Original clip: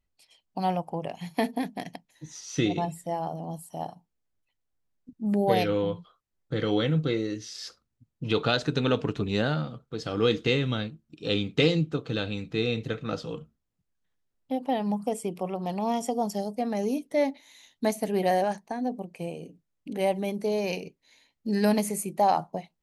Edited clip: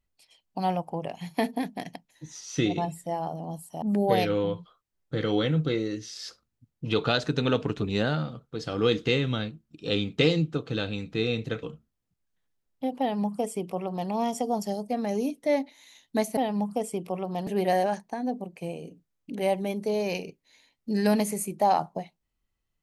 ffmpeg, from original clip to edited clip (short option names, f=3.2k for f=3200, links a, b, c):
-filter_complex "[0:a]asplit=5[a][b][c][d][e];[a]atrim=end=3.822[f];[b]atrim=start=5.208:end=13.022[g];[c]atrim=start=13.308:end=18.052[h];[d]atrim=start=14.678:end=15.782[i];[e]atrim=start=18.048[j];[f][g]acrossfade=d=0.004:c1=hsin:c2=hsin[k];[k][h]acrossfade=d=0.004:c1=hsin:c2=hsin[l];[l][i]acrossfade=d=0.004:c1=hsin:c2=hsin[m];[m][j]acrossfade=d=0.004:c1=hsin:c2=hsin"